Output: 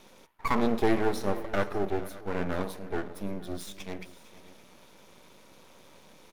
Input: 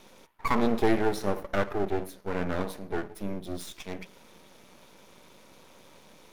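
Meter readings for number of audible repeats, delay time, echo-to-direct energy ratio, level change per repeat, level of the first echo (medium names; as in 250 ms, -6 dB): 2, 456 ms, -15.5 dB, no regular repeats, -18.0 dB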